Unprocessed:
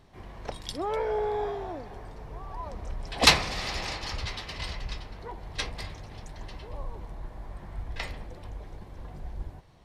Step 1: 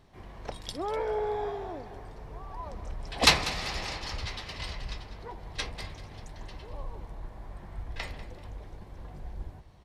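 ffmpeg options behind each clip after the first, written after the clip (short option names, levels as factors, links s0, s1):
-af "aecho=1:1:194|388|582:0.178|0.0622|0.0218,volume=0.794"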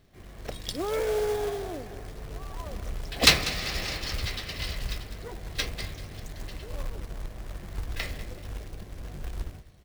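-af "equalizer=f=910:t=o:w=0.53:g=-11.5,dynaudnorm=f=120:g=7:m=1.88,acrusher=bits=3:mode=log:mix=0:aa=0.000001,volume=0.891"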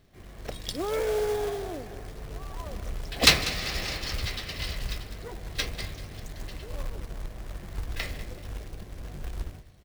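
-af "aecho=1:1:150:0.0668"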